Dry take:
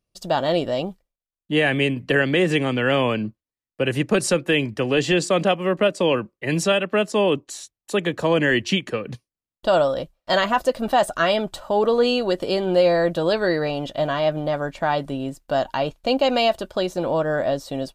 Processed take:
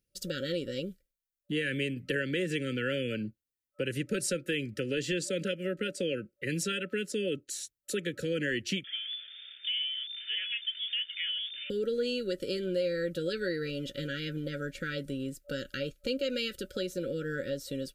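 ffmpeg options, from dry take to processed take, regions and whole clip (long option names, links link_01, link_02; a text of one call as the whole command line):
ffmpeg -i in.wav -filter_complex "[0:a]asettb=1/sr,asplit=3[link_01][link_02][link_03];[link_01]atrim=end=8.844[link_04];[link_02]atrim=start=8.84:end=11.7,asetpts=PTS-STARTPTS,afade=type=in:duration=0.004:curve=qsin,afade=type=out:start_time=2.856:duration=0.004:curve=qsin,aeval=exprs='val(0)+0.5*0.0531*sgn(val(0))':channel_layout=same,lowpass=frequency=3100:width_type=q:width=0.5098,lowpass=frequency=3100:width_type=q:width=0.6013,lowpass=frequency=3100:width_type=q:width=0.9,lowpass=frequency=3100:width_type=q:width=2.563,afreqshift=-3600,aderivative[link_05];[link_03]atrim=start=11.696[link_06];[link_04][link_05]acrossfade=duration=0.004:curve1=hsin:curve2=qsin[link_07];[link_07][link_06]acrossfade=duration=0.004:curve1=qsin:curve2=hsin,afftfilt=real='re*(1-between(b*sr/4096,580,1300))':imag='im*(1-between(b*sr/4096,580,1300))':win_size=4096:overlap=0.75,highshelf=frequency=8600:gain=10,acompressor=threshold=-31dB:ratio=2,volume=-4dB" out.wav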